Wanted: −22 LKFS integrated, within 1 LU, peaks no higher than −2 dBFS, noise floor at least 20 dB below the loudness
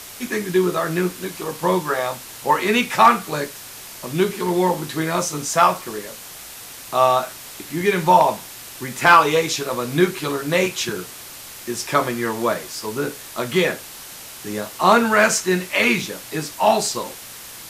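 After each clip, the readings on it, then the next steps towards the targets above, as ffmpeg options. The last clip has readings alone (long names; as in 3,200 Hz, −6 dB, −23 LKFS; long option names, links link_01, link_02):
background noise floor −38 dBFS; target noise floor −40 dBFS; integrated loudness −19.5 LKFS; sample peak −1.5 dBFS; target loudness −22.0 LKFS
→ -af "afftdn=noise_reduction=6:noise_floor=-38"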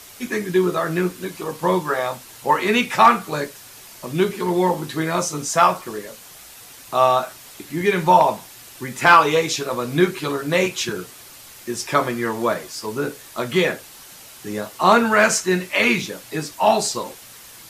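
background noise floor −43 dBFS; integrated loudness −20.0 LKFS; sample peak −1.0 dBFS; target loudness −22.0 LKFS
→ -af "volume=-2dB"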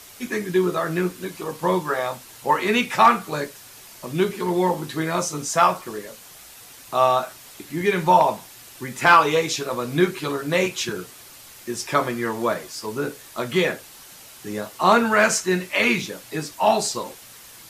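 integrated loudness −22.0 LKFS; sample peak −3.0 dBFS; background noise floor −45 dBFS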